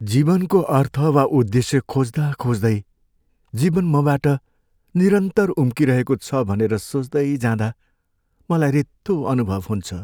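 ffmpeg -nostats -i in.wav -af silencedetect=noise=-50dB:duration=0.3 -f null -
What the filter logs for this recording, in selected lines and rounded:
silence_start: 2.83
silence_end: 3.48 | silence_duration: 0.66
silence_start: 4.39
silence_end: 4.88 | silence_duration: 0.50
silence_start: 7.73
silence_end: 8.41 | silence_duration: 0.68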